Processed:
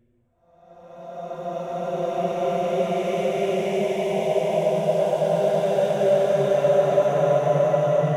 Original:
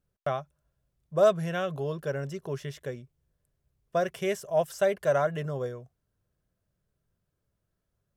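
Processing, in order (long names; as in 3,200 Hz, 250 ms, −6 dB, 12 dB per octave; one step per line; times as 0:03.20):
adaptive Wiener filter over 9 samples
flanger swept by the level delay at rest 10.9 ms, full sweep at −25 dBFS
extreme stretch with random phases 4.1×, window 1.00 s, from 0:03.37
level +8.5 dB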